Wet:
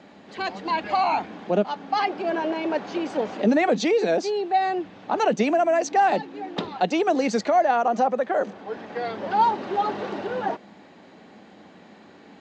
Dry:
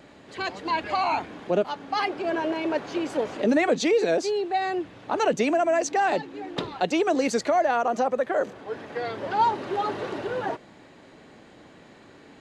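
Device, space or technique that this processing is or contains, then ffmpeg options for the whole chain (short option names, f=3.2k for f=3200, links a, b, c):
car door speaker: -af "highpass=95,equalizer=f=130:t=q:w=4:g=-9,equalizer=f=200:t=q:w=4:g=9,equalizer=f=780:t=q:w=4:g=5,lowpass=f=6.7k:w=0.5412,lowpass=f=6.7k:w=1.3066"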